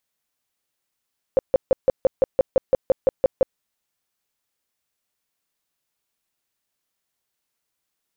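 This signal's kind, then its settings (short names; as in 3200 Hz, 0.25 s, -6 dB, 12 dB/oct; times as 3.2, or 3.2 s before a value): tone bursts 527 Hz, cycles 10, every 0.17 s, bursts 13, -11 dBFS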